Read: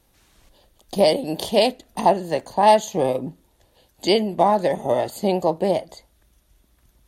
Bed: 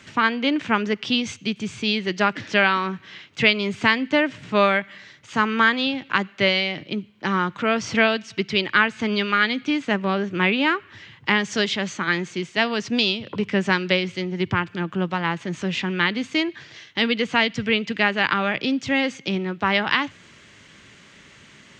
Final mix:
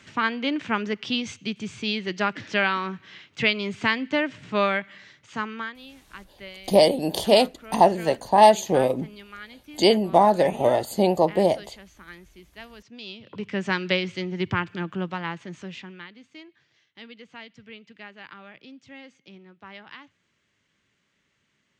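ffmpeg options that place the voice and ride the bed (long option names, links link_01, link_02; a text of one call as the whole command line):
ffmpeg -i stem1.wav -i stem2.wav -filter_complex "[0:a]adelay=5750,volume=0.5dB[link_01];[1:a]volume=14.5dB,afade=type=out:start_time=5.09:duration=0.66:silence=0.133352,afade=type=in:start_time=12.99:duration=0.93:silence=0.112202,afade=type=out:start_time=14.68:duration=1.39:silence=0.1[link_02];[link_01][link_02]amix=inputs=2:normalize=0" out.wav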